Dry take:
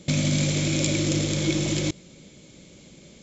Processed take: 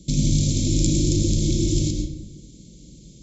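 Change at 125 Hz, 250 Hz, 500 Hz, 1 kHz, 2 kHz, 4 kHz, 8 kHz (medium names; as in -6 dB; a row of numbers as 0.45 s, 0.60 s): +4.0 dB, +2.0 dB, -1.5 dB, under -20 dB, -15.0 dB, -1.5 dB, no reading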